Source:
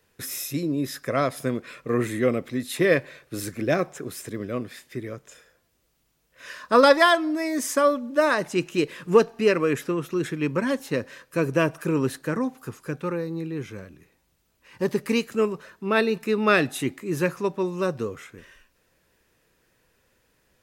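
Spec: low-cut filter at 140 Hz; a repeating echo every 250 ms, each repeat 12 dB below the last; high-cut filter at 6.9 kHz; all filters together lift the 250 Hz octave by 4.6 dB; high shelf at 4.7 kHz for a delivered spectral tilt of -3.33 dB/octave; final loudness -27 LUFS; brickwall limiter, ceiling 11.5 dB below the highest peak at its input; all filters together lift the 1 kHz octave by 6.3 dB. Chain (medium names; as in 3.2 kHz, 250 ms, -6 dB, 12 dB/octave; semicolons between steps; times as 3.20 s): high-pass 140 Hz; low-pass 6.9 kHz; peaking EQ 250 Hz +6 dB; peaking EQ 1 kHz +8 dB; treble shelf 4.7 kHz -5 dB; peak limiter -11 dBFS; feedback delay 250 ms, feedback 25%, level -12 dB; trim -3 dB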